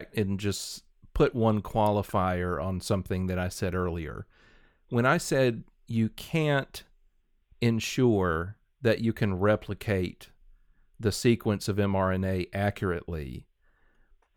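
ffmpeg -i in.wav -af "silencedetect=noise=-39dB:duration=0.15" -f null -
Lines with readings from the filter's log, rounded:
silence_start: 0.78
silence_end: 1.16 | silence_duration: 0.38
silence_start: 4.22
silence_end: 4.92 | silence_duration: 0.70
silence_start: 5.62
silence_end: 5.89 | silence_duration: 0.28
silence_start: 6.80
silence_end: 7.62 | silence_duration: 0.82
silence_start: 8.52
silence_end: 8.83 | silence_duration: 0.31
silence_start: 10.25
silence_end: 11.00 | silence_duration: 0.75
silence_start: 13.38
silence_end: 14.36 | silence_duration: 0.98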